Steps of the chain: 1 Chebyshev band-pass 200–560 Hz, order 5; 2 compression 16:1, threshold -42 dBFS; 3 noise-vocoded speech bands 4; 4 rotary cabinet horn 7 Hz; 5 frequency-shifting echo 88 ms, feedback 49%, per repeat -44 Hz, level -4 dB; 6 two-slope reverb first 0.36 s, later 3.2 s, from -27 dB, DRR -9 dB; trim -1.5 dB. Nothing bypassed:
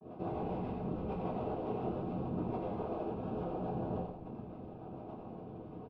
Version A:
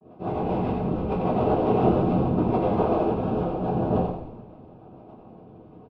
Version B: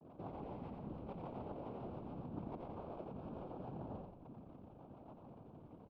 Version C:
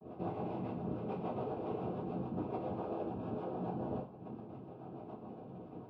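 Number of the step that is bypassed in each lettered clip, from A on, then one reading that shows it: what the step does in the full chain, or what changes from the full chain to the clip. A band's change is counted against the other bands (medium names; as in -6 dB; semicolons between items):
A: 2, mean gain reduction 9.0 dB; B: 6, echo-to-direct 11.0 dB to -3.0 dB; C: 5, echo-to-direct 11.0 dB to 9.0 dB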